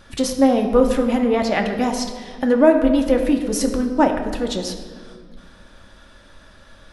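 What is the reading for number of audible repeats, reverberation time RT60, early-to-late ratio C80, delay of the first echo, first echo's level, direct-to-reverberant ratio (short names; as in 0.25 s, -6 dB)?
none, 1.8 s, 9.0 dB, none, none, 2.5 dB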